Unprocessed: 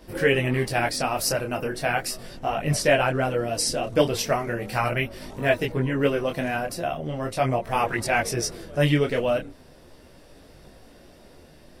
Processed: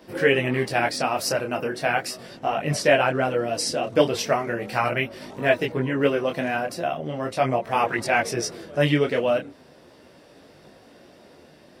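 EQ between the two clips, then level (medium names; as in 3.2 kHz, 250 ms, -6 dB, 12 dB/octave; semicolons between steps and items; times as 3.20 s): Bessel high-pass 170 Hz, order 2; peaking EQ 12 kHz -8 dB 1.3 oct; +2.0 dB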